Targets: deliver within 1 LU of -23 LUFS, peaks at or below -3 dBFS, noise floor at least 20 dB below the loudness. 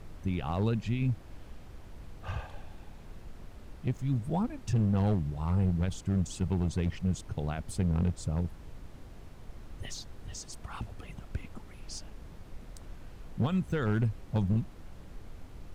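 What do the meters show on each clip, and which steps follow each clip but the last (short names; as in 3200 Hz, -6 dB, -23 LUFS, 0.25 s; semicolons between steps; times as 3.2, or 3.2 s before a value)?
clipped 1.2%; flat tops at -22.0 dBFS; noise floor -49 dBFS; noise floor target -53 dBFS; loudness -32.5 LUFS; peak -22.0 dBFS; loudness target -23.0 LUFS
-> clip repair -22 dBFS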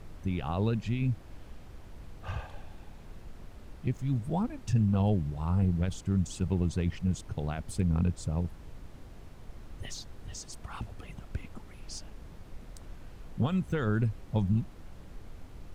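clipped 0.0%; noise floor -49 dBFS; noise floor target -52 dBFS
-> noise print and reduce 6 dB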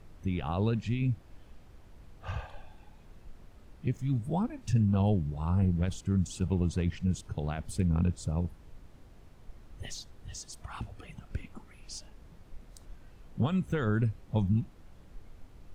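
noise floor -55 dBFS; loudness -31.5 LUFS; peak -16.5 dBFS; loudness target -23.0 LUFS
-> gain +8.5 dB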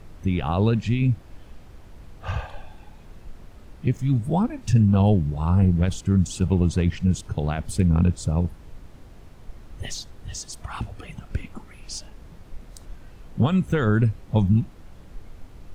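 loudness -23.0 LUFS; peak -8.0 dBFS; noise floor -46 dBFS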